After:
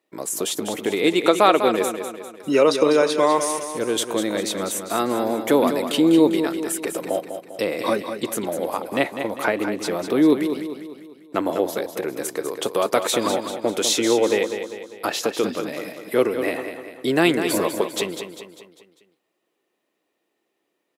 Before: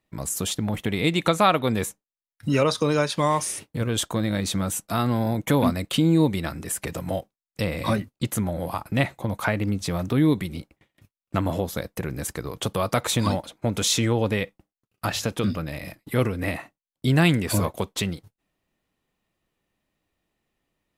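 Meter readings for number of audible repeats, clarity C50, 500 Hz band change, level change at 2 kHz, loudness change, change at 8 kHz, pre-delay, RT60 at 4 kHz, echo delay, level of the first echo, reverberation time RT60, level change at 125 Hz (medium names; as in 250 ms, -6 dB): 5, no reverb, +7.0 dB, +2.5 dB, +3.0 dB, +2.0 dB, no reverb, no reverb, 199 ms, -8.5 dB, no reverb, -13.0 dB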